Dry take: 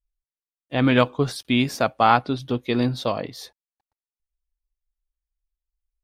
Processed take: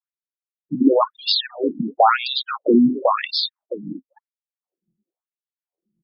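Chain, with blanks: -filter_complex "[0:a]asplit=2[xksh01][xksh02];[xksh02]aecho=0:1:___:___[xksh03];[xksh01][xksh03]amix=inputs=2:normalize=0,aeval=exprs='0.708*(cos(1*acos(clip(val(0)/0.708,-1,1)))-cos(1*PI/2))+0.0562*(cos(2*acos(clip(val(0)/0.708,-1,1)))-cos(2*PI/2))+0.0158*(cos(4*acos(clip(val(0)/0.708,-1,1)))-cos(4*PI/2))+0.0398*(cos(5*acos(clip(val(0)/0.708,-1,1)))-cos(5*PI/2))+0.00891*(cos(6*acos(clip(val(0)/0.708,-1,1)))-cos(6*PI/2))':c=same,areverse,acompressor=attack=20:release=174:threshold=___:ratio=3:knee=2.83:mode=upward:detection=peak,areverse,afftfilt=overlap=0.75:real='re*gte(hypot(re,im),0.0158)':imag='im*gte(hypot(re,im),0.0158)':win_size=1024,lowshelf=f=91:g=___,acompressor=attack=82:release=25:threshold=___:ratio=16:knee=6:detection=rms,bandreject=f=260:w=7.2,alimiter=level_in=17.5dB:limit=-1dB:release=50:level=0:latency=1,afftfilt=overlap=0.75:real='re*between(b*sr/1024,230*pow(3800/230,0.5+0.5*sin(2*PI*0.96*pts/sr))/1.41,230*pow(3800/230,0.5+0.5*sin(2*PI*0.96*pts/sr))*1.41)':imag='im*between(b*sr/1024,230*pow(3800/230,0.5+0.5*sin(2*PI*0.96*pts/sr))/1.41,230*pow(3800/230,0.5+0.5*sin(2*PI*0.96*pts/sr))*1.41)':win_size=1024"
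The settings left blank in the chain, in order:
664, 0.106, -33dB, -2.5, -24dB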